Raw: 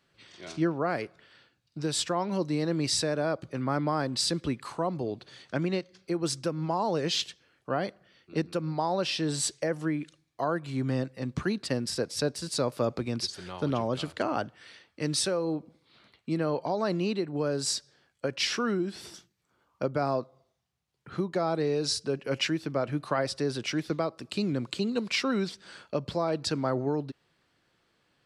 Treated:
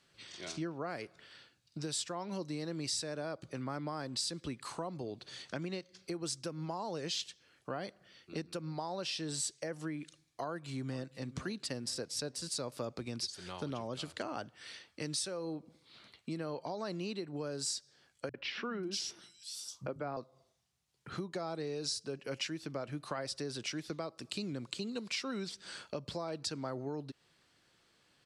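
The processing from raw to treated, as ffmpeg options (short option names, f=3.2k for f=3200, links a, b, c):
-filter_complex "[0:a]asplit=2[a][b];[b]afade=t=in:st=10.45:d=0.01,afade=t=out:st=11.14:d=0.01,aecho=0:1:470|940|1410|1880:0.133352|0.0666761|0.033338|0.016669[c];[a][c]amix=inputs=2:normalize=0,asettb=1/sr,asplit=3[d][e][f];[d]atrim=end=18.294[g];[e]atrim=start=18.29:end=20.17,asetpts=PTS-STARTPTS,afade=t=in:d=0.004:c=qsin,afade=t=out:st=1.876:d=0.004:c=qsin,acrossover=split=150|3300[h][i][j];[i]adelay=50[k];[j]adelay=540[l];[h][k][l]amix=inputs=3:normalize=0,atrim=end_sample=82908[m];[f]atrim=start=20.166[n];[g][m]acrossfade=d=0.004:c1=hsin:c2=qsin[o];[o][n]acrossfade=d=0.004:c1=qsin:c2=hsin,lowpass=10k,highshelf=f=4.4k:g=11.5,acompressor=threshold=-39dB:ratio=2.5,volume=-1.5dB"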